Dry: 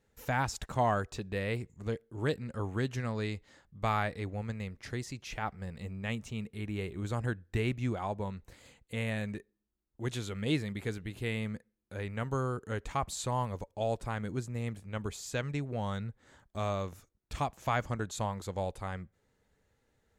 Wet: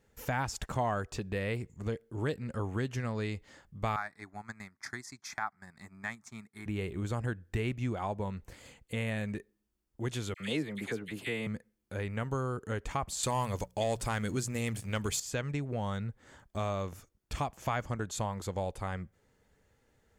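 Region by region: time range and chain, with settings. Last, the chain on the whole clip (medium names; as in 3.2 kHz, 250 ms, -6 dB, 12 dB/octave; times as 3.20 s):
3.96–6.66 s: frequency weighting A + transient shaper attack +5 dB, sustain -9 dB + static phaser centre 1.2 kHz, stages 4
10.34–11.47 s: high-pass 190 Hz + phase dispersion lows, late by 60 ms, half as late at 1.4 kHz
13.23–15.20 s: treble shelf 2.4 kHz +11.5 dB + hum notches 60/120/180 Hz + waveshaping leveller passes 1
whole clip: band-stop 3.9 kHz, Q 13; compression 2:1, threshold -37 dBFS; trim +4 dB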